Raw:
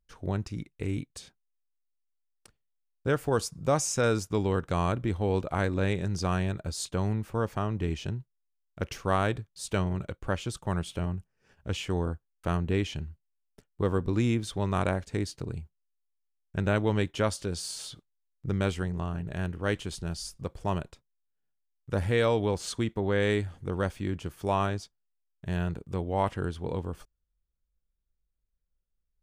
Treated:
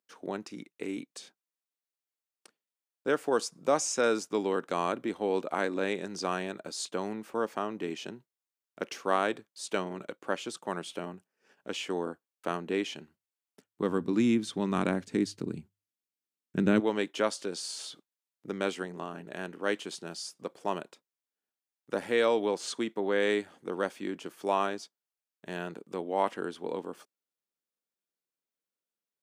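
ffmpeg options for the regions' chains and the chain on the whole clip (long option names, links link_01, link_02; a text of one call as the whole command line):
ffmpeg -i in.wav -filter_complex "[0:a]asettb=1/sr,asplit=3[link_01][link_02][link_03];[link_01]atrim=end=13.004[link_04];[link_02]atrim=start=13:end=16.8,asetpts=PTS-STARTPTS,afade=type=in:duration=0.004:curve=qsin,afade=type=out:start_time=3.796:duration=0.004:curve=qsin,asubboost=boost=11.5:cutoff=220,bandreject=frequency=50:width_type=h:width=6,bandreject=frequency=100:width_type=h:width=6[link_05];[link_03]atrim=start=16.796[link_06];[link_04][link_05]acrossfade=duration=0.004:curve1=hsin:curve2=qsin[link_07];[link_07][link_06]acrossfade=duration=0.004:curve1=qsin:curve2=hsin,acrossover=split=9600[link_08][link_09];[link_09]acompressor=threshold=-59dB:ratio=4:attack=1:release=60[link_10];[link_08][link_10]amix=inputs=2:normalize=0,highpass=frequency=240:width=0.5412,highpass=frequency=240:width=1.3066" out.wav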